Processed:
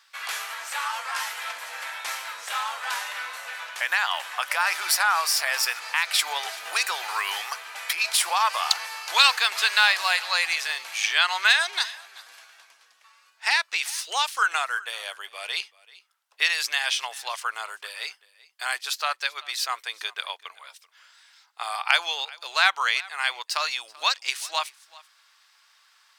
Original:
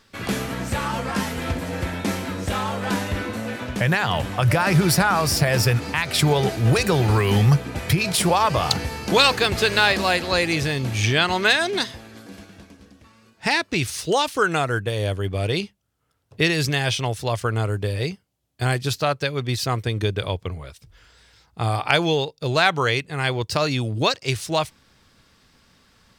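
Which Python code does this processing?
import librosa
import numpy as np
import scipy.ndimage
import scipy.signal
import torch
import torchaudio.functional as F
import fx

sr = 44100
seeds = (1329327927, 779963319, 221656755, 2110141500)

p1 = scipy.signal.sosfilt(scipy.signal.butter(4, 930.0, 'highpass', fs=sr, output='sos'), x)
y = p1 + fx.echo_single(p1, sr, ms=385, db=-22.0, dry=0)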